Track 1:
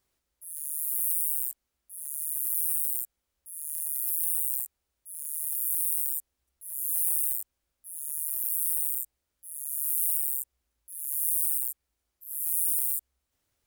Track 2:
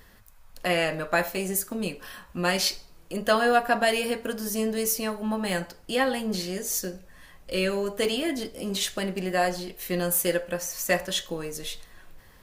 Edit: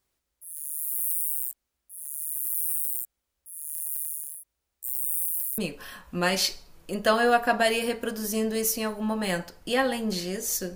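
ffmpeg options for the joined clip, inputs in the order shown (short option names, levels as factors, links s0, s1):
-filter_complex "[0:a]apad=whole_dur=10.75,atrim=end=10.75,asplit=2[s0][s1];[s0]atrim=end=3.912[s2];[s1]atrim=start=3.908:end=5.582,asetpts=PTS-STARTPTS,areverse[s3];[1:a]atrim=start=1.798:end=6.97[s4];[s2][s3]acrossfade=d=0.004:c1=hsin:c2=hsin[s5];[s5][s4]acrossfade=d=0.004:c1=hsin:c2=hsin"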